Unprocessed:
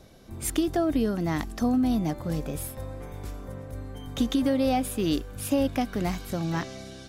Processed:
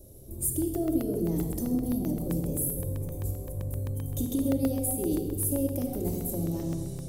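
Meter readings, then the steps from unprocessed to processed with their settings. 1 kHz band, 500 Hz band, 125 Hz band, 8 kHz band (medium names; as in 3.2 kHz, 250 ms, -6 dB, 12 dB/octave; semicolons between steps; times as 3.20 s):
-13.0 dB, -3.0 dB, +2.0 dB, +4.5 dB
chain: FFT filter 120 Hz 0 dB, 240 Hz -7 dB, 430 Hz +2 dB, 1.5 kHz -28 dB, 5.7 kHz -8 dB, 8.1 kHz +5 dB, 12 kHz +13 dB; compression 2.5:1, threshold -32 dBFS, peak gain reduction 10 dB; simulated room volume 3000 m³, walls mixed, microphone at 2.6 m; crackling interface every 0.13 s, samples 64, zero, from 0.62 s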